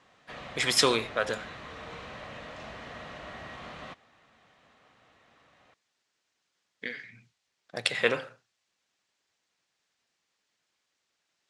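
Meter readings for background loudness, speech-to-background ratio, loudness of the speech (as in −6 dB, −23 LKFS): −43.0 LKFS, 15.0 dB, −28.0 LKFS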